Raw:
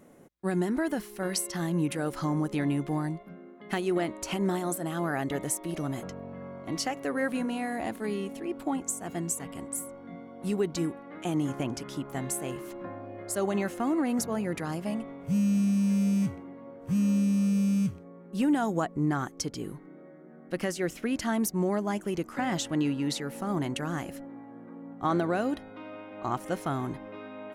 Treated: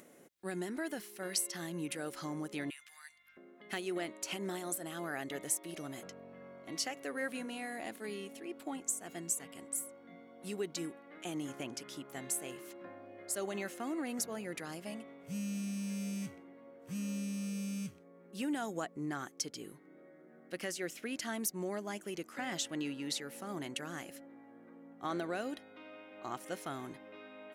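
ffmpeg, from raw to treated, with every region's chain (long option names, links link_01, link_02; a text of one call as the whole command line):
ffmpeg -i in.wav -filter_complex "[0:a]asettb=1/sr,asplit=3[link_01][link_02][link_03];[link_01]atrim=end=2.704[link_04];[link_02]atrim=start=2.7:end=3.37,asetpts=PTS-STARTPTS,afade=type=in:duration=0.004:curve=qsin,afade=type=out:start_time=0.666:duration=0.004:curve=qsin,highpass=frequency=1500:width=0.5412,highpass=frequency=1500:width=1.3066,aeval=exprs='val(0)+0.000251*(sin(2*PI*50*n/s)+sin(2*PI*2*50*n/s)/2+sin(2*PI*3*50*n/s)/3+sin(2*PI*4*50*n/s)/4+sin(2*PI*5*50*n/s)/5)':channel_layout=same[link_05];[link_03]atrim=start=3.366[link_06];[link_04][link_05]acrossfade=duration=0.004:curve1=hsin:curve2=qsin[link_07];[link_07][link_06]acrossfade=duration=0.004:curve1=qsin:curve2=hsin,highpass=frequency=670:poles=1,equalizer=frequency=980:width=1.2:gain=-7.5,acompressor=mode=upward:threshold=-50dB:ratio=2.5,volume=-2.5dB" out.wav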